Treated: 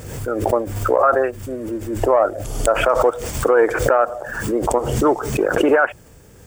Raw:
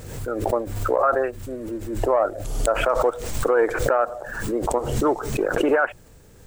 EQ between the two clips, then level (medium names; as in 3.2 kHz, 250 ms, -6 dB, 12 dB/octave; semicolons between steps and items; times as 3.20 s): high-pass 40 Hz; band-stop 4 kHz, Q 8.2; +4.5 dB